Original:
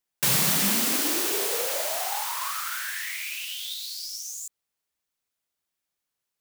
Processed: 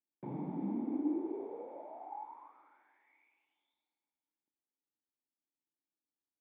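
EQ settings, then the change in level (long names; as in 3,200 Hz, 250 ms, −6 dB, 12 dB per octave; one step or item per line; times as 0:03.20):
formant resonators in series u
high-pass filter 130 Hz
+2.5 dB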